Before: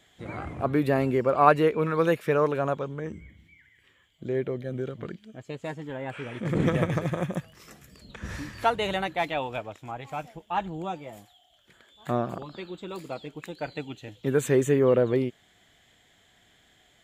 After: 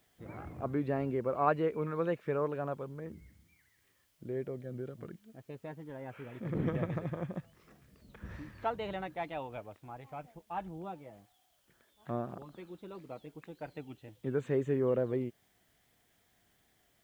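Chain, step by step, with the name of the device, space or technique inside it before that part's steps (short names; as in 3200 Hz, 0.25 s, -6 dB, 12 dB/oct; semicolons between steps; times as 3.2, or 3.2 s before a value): cassette deck with a dirty head (tape spacing loss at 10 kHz 27 dB; wow and flutter; white noise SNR 37 dB); gain -8 dB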